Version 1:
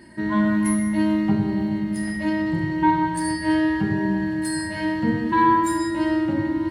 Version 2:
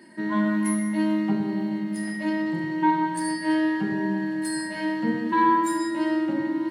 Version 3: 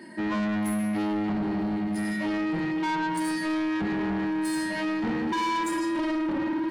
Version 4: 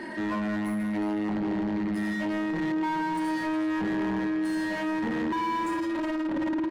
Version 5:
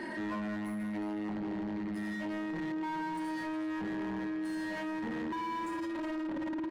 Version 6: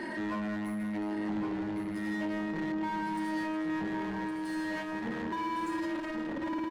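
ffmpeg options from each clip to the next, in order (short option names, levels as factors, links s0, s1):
-af "highpass=f=180:w=0.5412,highpass=f=180:w=1.3066,volume=0.75"
-filter_complex "[0:a]highshelf=f=4900:g=-4.5,asplit=2[s0][s1];[s1]alimiter=limit=0.106:level=0:latency=1,volume=0.841[s2];[s0][s2]amix=inputs=2:normalize=0,asoftclip=type=tanh:threshold=0.0562"
-filter_complex "[0:a]asplit=2[s0][s1];[s1]highpass=f=720:p=1,volume=14.1,asoftclip=type=tanh:threshold=0.0562[s2];[s0][s2]amix=inputs=2:normalize=0,lowpass=f=1300:p=1,volume=0.501,aecho=1:1:363:0.2"
-af "alimiter=level_in=1.88:limit=0.0631:level=0:latency=1,volume=0.531,volume=0.75"
-af "aecho=1:1:1112:0.447,volume=1.26"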